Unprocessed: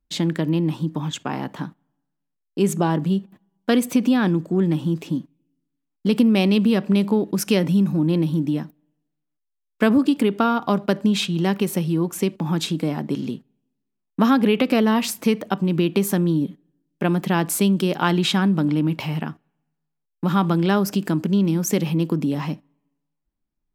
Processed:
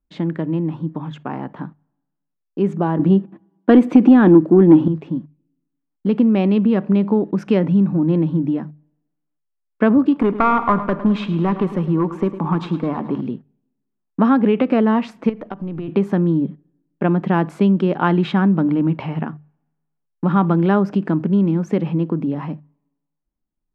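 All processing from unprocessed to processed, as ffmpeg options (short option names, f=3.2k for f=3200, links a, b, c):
-filter_complex "[0:a]asettb=1/sr,asplit=3[a][b][c];[a]atrim=end=2.994[d];[b]atrim=start=2.99:end=4.88,asetpts=PTS-STARTPTS,afade=t=in:d=0.004:c=qsin,afade=t=out:st=1.886:d=0.004:c=qsin,highpass=140,equalizer=f=320:t=o:w=0.32:g=11,acontrast=70[e];[c]atrim=start=4.876[f];[d][e]acrossfade=d=0.004:c1=hsin:c2=qsin[g];[g][f]acrossfade=d=0.004:c1=qsin:c2=hsin,asettb=1/sr,asplit=3[h][i][j];[h]atrim=end=10.124[k];[i]atrim=start=10.12:end=13.21,asetpts=PTS-STARTPTS,afade=t=in:d=0.004:c=qsin,afade=t=out:st=3.086:d=0.004:c=qsin,equalizer=f=1.1k:w=2.7:g=11.5,aeval=exprs='clip(val(0),-1,0.2)':c=same,aecho=1:1:106|212|318|424|530|636:0.211|0.116|0.0639|0.0352|0.0193|0.0106,atrim=end_sample=136269[l];[j]atrim=start=13.206[m];[k][l]acrossfade=d=0.004:c1=hsin:c2=qsin[n];[n][m]acrossfade=d=0.004:c1=qsin:c2=hsin,asettb=1/sr,asplit=3[o][p][q];[o]atrim=end=15.294[r];[p]atrim=start=15.29:end=15.88,asetpts=PTS-STARTPTS,afade=t=in:d=0.004:c=qsin,afade=t=out:st=0.586:d=0.004:c=qsin,aeval=exprs='if(lt(val(0),0),0.708*val(0),val(0))':c=same,acompressor=threshold=-27dB:ratio=4:attack=3.2:release=140:knee=1:detection=peak[s];[q]atrim=start=15.876[t];[r][s]acrossfade=d=0.004:c1=hsin:c2=qsin[u];[u][t]acrossfade=d=0.004:c1=qsin:c2=hsin,lowpass=1.6k,bandreject=f=50:t=h:w=6,bandreject=f=100:t=h:w=6,bandreject=f=150:t=h:w=6,dynaudnorm=f=250:g=17:m=5dB"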